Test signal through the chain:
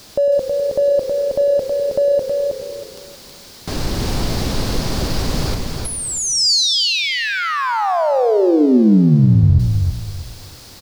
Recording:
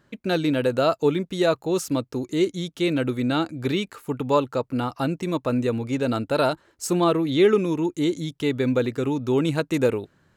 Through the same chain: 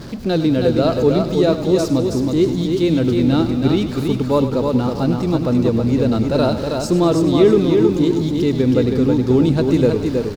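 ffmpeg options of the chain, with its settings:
-filter_complex "[0:a]aeval=exprs='val(0)+0.5*0.0251*sgn(val(0))':c=same,equalizer=f=4700:t=o:w=0.94:g=13,asplit=2[s0][s1];[s1]aecho=0:1:320|640|960|1280:0.596|0.155|0.0403|0.0105[s2];[s0][s2]amix=inputs=2:normalize=0,acrusher=bits=7:mix=0:aa=0.5,tiltshelf=f=910:g=8,asplit=2[s3][s4];[s4]asplit=7[s5][s6][s7][s8][s9][s10][s11];[s5]adelay=101,afreqshift=-31,volume=0.251[s12];[s6]adelay=202,afreqshift=-62,volume=0.158[s13];[s7]adelay=303,afreqshift=-93,volume=0.1[s14];[s8]adelay=404,afreqshift=-124,volume=0.0631[s15];[s9]adelay=505,afreqshift=-155,volume=0.0394[s16];[s10]adelay=606,afreqshift=-186,volume=0.0248[s17];[s11]adelay=707,afreqshift=-217,volume=0.0157[s18];[s12][s13][s14][s15][s16][s17][s18]amix=inputs=7:normalize=0[s19];[s3][s19]amix=inputs=2:normalize=0,volume=0.891"

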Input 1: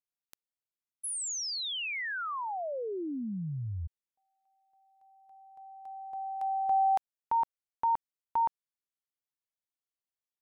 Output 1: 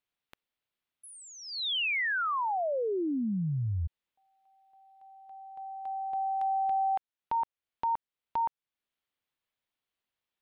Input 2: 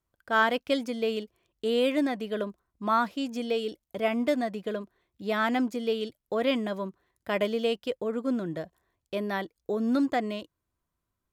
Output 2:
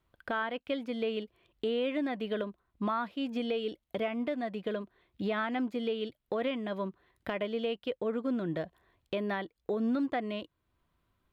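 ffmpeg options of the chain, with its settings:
-filter_complex "[0:a]acrossover=split=3300[s0][s1];[s1]acompressor=threshold=0.00398:ratio=4:attack=1:release=60[s2];[s0][s2]amix=inputs=2:normalize=0,highshelf=f=4600:t=q:w=1.5:g=-9,acompressor=threshold=0.0178:ratio=6:attack=0.75:release=520:knee=6:detection=rms,volume=2.51"

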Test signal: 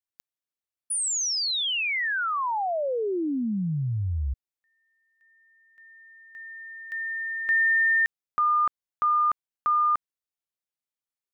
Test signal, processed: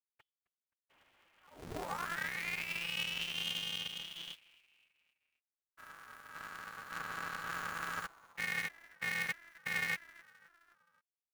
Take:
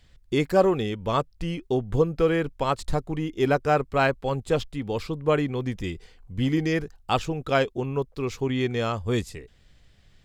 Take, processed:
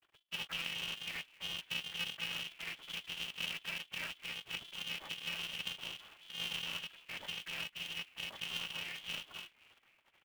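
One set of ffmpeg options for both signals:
-filter_complex "[0:a]asoftclip=type=tanh:threshold=0.0841,lowshelf=f=140:t=q:w=1.5:g=-9.5,acrusher=bits=8:mix=0:aa=0.000001,lowpass=f=2700:t=q:w=0.5098,lowpass=f=2700:t=q:w=0.6013,lowpass=f=2700:t=q:w=0.9,lowpass=f=2700:t=q:w=2.563,afreqshift=-3200,acrusher=bits=4:mode=log:mix=0:aa=0.000001,acompressor=threshold=0.01:ratio=2.5:attack=0.11:release=128:detection=peak,afftfilt=real='hypot(re,im)*cos(2*PI*random(0))':imag='hypot(re,im)*sin(2*PI*random(1))':win_size=512:overlap=0.75,aecho=1:1:4:0.84,asplit=2[s0][s1];[s1]asplit=4[s2][s3][s4][s5];[s2]adelay=262,afreqshift=-150,volume=0.0794[s6];[s3]adelay=524,afreqshift=-300,volume=0.0437[s7];[s4]adelay=786,afreqshift=-450,volume=0.024[s8];[s5]adelay=1048,afreqshift=-600,volume=0.0132[s9];[s6][s7][s8][s9]amix=inputs=4:normalize=0[s10];[s0][s10]amix=inputs=2:normalize=0,aeval=exprs='0.0376*(cos(1*acos(clip(val(0)/0.0376,-1,1)))-cos(1*PI/2))+0.0015*(cos(4*acos(clip(val(0)/0.0376,-1,1)))-cos(4*PI/2))+0.000841*(cos(8*acos(clip(val(0)/0.0376,-1,1)))-cos(8*PI/2))':c=same,aeval=exprs='val(0)*sgn(sin(2*PI*170*n/s))':c=same,volume=1.19"

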